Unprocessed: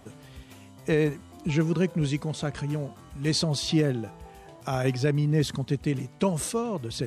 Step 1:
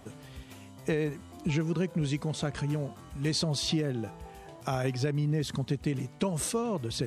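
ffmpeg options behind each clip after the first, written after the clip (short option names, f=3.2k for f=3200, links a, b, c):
-af "acompressor=threshold=-25dB:ratio=6"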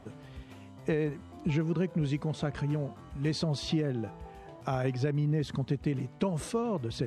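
-af "lowpass=f=2.3k:p=1"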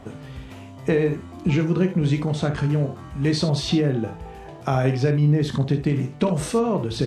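-af "aecho=1:1:22|54|74:0.316|0.299|0.224,volume=8.5dB"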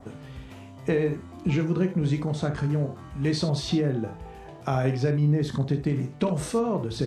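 -af "adynamicequalizer=threshold=0.00316:dfrequency=2800:dqfactor=2.1:tfrequency=2800:tqfactor=2.1:attack=5:release=100:ratio=0.375:range=3:mode=cutabove:tftype=bell,volume=-4dB"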